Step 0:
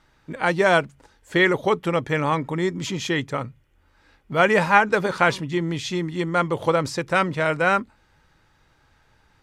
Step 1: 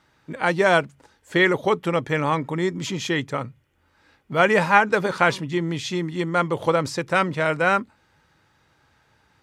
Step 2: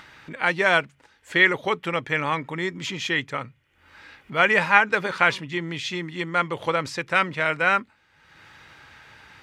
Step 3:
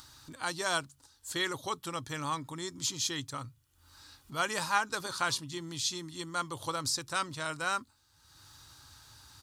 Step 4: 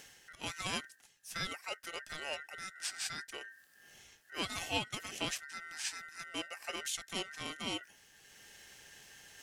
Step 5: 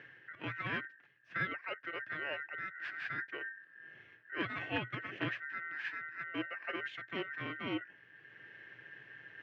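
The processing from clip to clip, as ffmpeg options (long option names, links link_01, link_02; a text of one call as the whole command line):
ffmpeg -i in.wav -af "highpass=82" out.wav
ffmpeg -i in.wav -af "equalizer=frequency=2300:width=0.69:gain=10.5,acompressor=mode=upward:threshold=-29dB:ratio=2.5,volume=-6.5dB" out.wav
ffmpeg -i in.wav -af "firequalizer=gain_entry='entry(110,0);entry(190,-16);entry(270,-6);entry(440,-16);entry(1100,-7);entry(2100,-22);entry(4100,3);entry(9200,11)':delay=0.05:min_phase=1" out.wav
ffmpeg -i in.wav -af "areverse,acompressor=mode=upward:threshold=-42dB:ratio=2.5,areverse,aeval=exprs='val(0)*sin(2*PI*1700*n/s)':channel_layout=same,volume=-3.5dB" out.wav
ffmpeg -i in.wav -af "aeval=exprs='(mod(11.9*val(0)+1,2)-1)/11.9':channel_layout=same,highpass=frequency=110:width=0.5412,highpass=frequency=110:width=1.3066,equalizer=frequency=120:width_type=q:width=4:gain=9,equalizer=frequency=210:width_type=q:width=4:gain=-6,equalizer=frequency=320:width_type=q:width=4:gain=6,equalizer=frequency=800:width_type=q:width=4:gain=-9,equalizer=frequency=1700:width_type=q:width=4:gain=9,lowpass=frequency=2400:width=0.5412,lowpass=frequency=2400:width=1.3066,volume=1.5dB" out.wav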